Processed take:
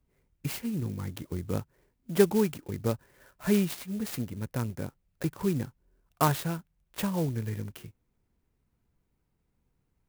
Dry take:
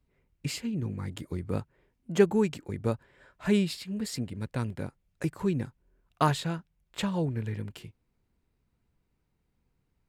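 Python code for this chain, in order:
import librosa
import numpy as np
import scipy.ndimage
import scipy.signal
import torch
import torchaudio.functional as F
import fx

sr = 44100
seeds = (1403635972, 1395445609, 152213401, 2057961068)

y = fx.clock_jitter(x, sr, seeds[0], jitter_ms=0.056)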